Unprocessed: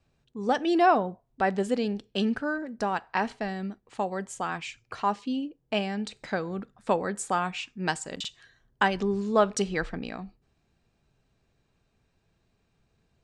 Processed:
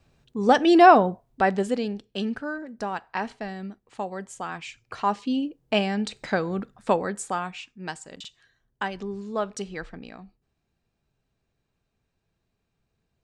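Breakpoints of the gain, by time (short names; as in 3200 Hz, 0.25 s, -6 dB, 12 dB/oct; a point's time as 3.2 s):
1.11 s +7.5 dB
2.04 s -2 dB
4.53 s -2 dB
5.41 s +5 dB
6.75 s +5 dB
7.77 s -6 dB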